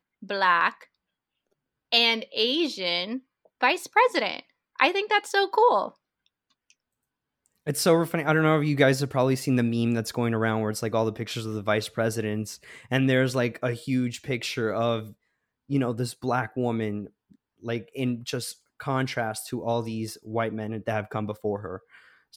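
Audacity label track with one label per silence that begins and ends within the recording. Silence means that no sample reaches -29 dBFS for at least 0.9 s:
0.690000	1.920000	silence
5.870000	7.670000	silence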